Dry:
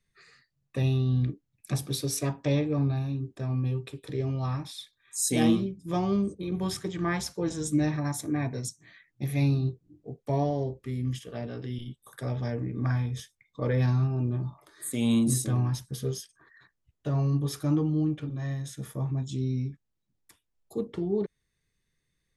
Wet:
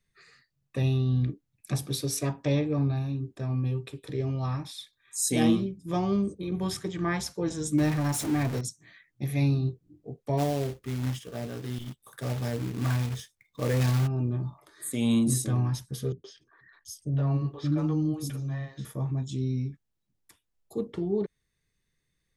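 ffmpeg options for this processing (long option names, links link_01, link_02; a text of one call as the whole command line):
ffmpeg -i in.wav -filter_complex "[0:a]asettb=1/sr,asplit=3[link_01][link_02][link_03];[link_01]atrim=end=7.784[link_04];[link_02]atrim=start=7.78:end=8.61,asetpts=PTS-STARTPTS,afade=type=in:duration=0.004:curve=qsin,afade=type=out:start_time=0.826:duration=0.004:curve=qsin,aeval=exprs='val(0)+0.5*0.0282*sgn(val(0))':channel_layout=same[link_05];[link_03]atrim=start=8.606[link_06];[link_04][link_05]acrossfade=duration=0.004:curve1=hsin:curve2=qsin[link_07];[link_07][link_06]acrossfade=duration=0.004:curve1=qsin:curve2=hsin,asplit=3[link_08][link_09][link_10];[link_08]afade=type=out:start_time=10.37:duration=0.02[link_11];[link_09]acrusher=bits=3:mode=log:mix=0:aa=0.000001,afade=type=in:start_time=10.37:duration=0.02,afade=type=out:start_time=14.06:duration=0.02[link_12];[link_10]afade=type=in:start_time=14.06:duration=0.02[link_13];[link_11][link_12][link_13]amix=inputs=3:normalize=0,asettb=1/sr,asplit=3[link_14][link_15][link_16];[link_14]atrim=end=16.124[link_17];[link_15]atrim=start=16.12:end=18.85,asetpts=PTS-STARTPTS,afade=type=in:duration=0.004:curve=qsin,afade=type=out:start_time=2.726:duration=0.004:curve=qsin,acrossover=split=390|4500[link_18][link_19][link_20];[link_19]adelay=120[link_21];[link_20]adelay=730[link_22];[link_18][link_21][link_22]amix=inputs=3:normalize=0,atrim=end_sample=120393[link_23];[link_16]atrim=start=18.846[link_24];[link_17][link_23]acrossfade=duration=0.004:curve1=hsin:curve2=qsin[link_25];[link_25][link_24]acrossfade=duration=0.004:curve1=qsin:curve2=hsin" out.wav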